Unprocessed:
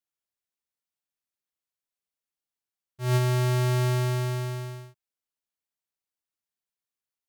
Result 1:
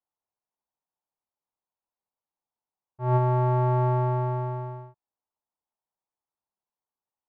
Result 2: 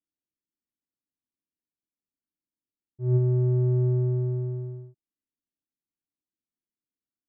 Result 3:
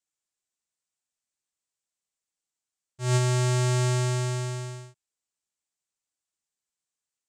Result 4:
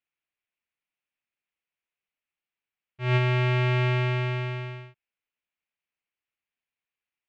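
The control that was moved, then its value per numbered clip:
low-pass with resonance, frequency: 910, 290, 7,700, 2,500 Hertz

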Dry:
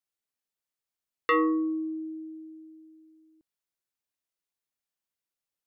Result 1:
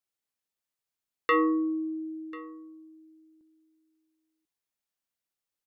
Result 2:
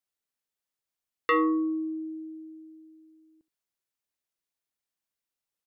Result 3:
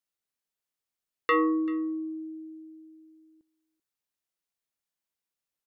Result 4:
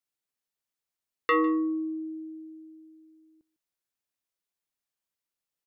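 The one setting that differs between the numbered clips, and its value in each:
single-tap delay, delay time: 1,042, 72, 388, 152 milliseconds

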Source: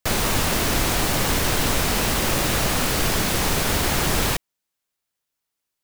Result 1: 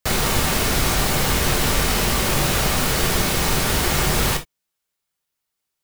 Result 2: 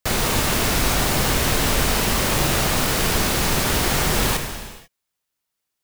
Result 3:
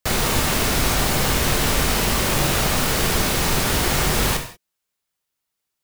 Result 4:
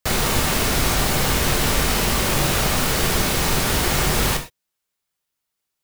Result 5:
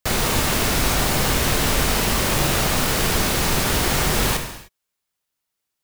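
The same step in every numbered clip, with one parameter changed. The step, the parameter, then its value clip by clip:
reverb whose tail is shaped and stops, gate: 90, 520, 210, 140, 330 milliseconds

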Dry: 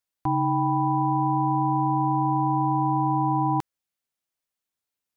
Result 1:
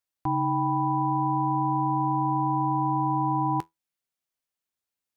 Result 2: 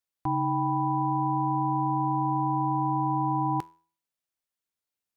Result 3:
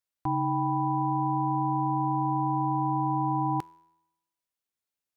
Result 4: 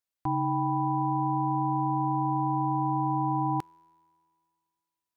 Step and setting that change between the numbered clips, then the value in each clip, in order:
tuned comb filter, decay: 0.15, 0.42, 0.9, 2.2 seconds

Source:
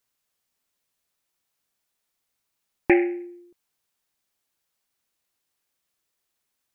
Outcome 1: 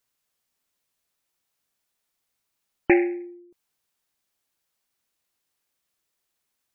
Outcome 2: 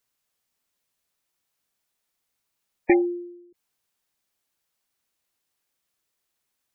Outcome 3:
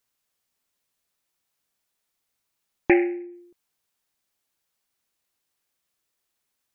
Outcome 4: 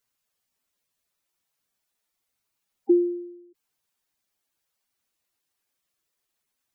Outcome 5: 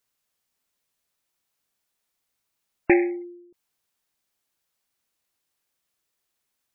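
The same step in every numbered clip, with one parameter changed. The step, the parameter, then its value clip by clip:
gate on every frequency bin, under each frame's peak: −45, −20, −60, −10, −35 decibels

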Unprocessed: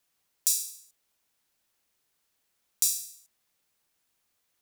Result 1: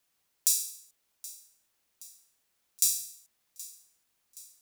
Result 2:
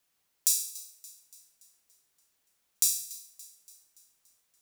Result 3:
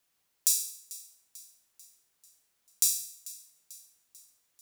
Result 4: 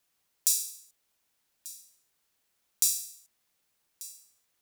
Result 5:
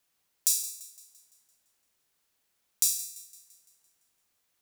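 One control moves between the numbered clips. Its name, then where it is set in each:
feedback echo with a high-pass in the loop, delay time: 773, 286, 442, 1,189, 170 milliseconds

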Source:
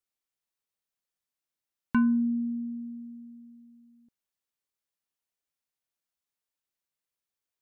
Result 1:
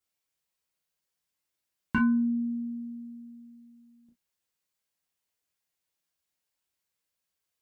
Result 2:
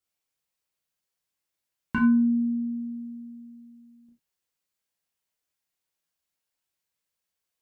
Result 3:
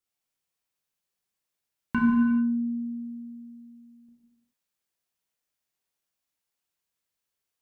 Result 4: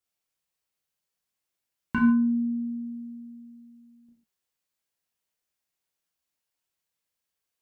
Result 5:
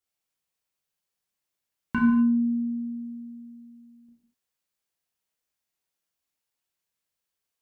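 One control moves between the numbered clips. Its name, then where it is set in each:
reverb whose tail is shaped and stops, gate: 80, 120, 460, 180, 270 milliseconds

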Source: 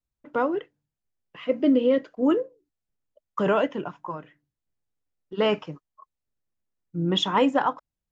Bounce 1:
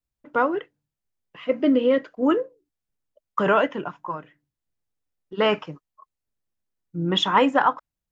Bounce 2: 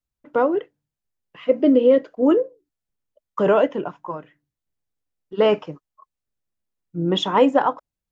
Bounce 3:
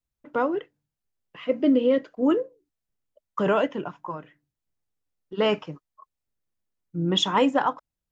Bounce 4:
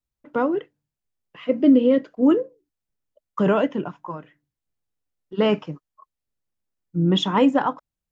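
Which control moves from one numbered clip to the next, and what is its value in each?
dynamic equaliser, frequency: 1,500, 510, 8,100, 200 Hertz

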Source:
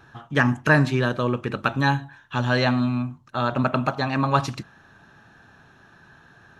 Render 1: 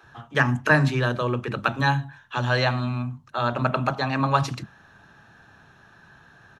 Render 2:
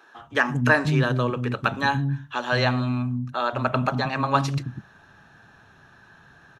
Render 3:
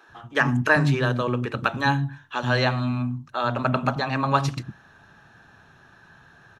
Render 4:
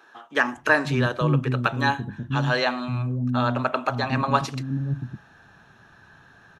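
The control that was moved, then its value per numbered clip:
multiband delay without the direct sound, delay time: 30, 180, 90, 540 milliseconds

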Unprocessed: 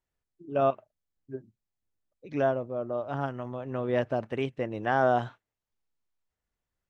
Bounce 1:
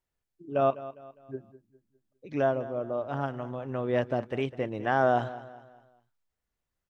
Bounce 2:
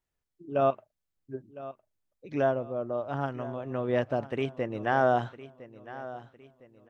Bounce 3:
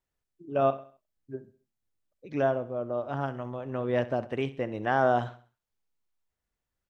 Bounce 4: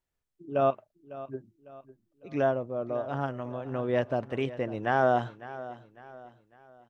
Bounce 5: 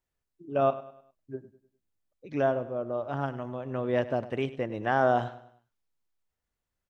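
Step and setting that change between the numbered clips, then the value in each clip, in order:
repeating echo, delay time: 203, 1,008, 66, 552, 101 milliseconds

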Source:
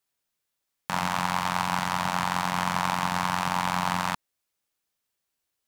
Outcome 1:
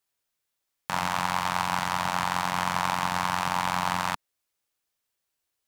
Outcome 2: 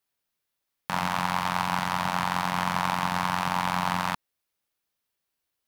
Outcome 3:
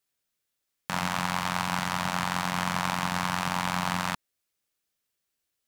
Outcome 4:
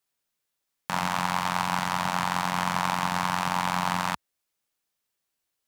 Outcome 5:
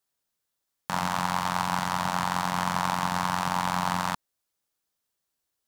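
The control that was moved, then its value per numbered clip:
parametric band, centre frequency: 200, 7,400, 910, 68, 2,400 Hertz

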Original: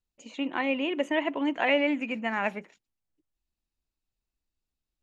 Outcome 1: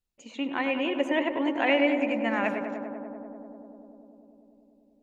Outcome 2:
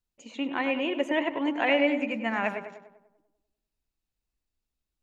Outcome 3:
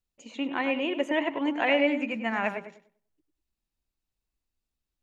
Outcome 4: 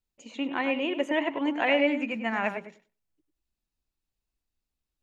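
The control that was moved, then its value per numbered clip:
feedback echo with a low-pass in the loop, feedback: 88, 55, 29, 15%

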